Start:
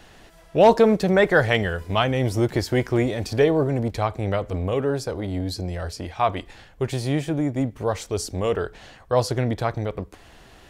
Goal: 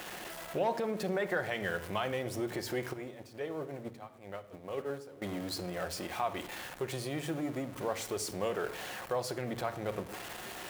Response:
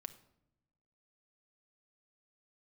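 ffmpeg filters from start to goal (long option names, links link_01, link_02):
-filter_complex "[0:a]aeval=exprs='val(0)+0.5*0.0266*sgn(val(0))':channel_layout=same,equalizer=frequency=5000:width=0.81:gain=-4.5,alimiter=limit=-17dB:level=0:latency=1:release=183,asettb=1/sr,asplit=3[link_01][link_02][link_03];[link_01]atrim=end=2.934[link_04];[link_02]atrim=start=2.93:end=5.22,asetpts=PTS-STARTPTS,afade=type=in:duration=0.004:curve=qsin,afade=type=out:start_time=2.286:duration=0.004:curve=qsin,agate=range=-18dB:threshold=-23dB:ratio=16:detection=peak[link_05];[link_03]atrim=start=5.216[link_06];[link_04][link_05]acrossfade=duration=0.004:curve1=hsin:curve2=qsin[link_07];[link_07][link_06]acrossfade=duration=0.004:curve1=qsin:curve2=hsin,highpass=frequency=430:poles=1[link_08];[1:a]atrim=start_sample=2205[link_09];[link_08][link_09]afir=irnorm=-1:irlink=0"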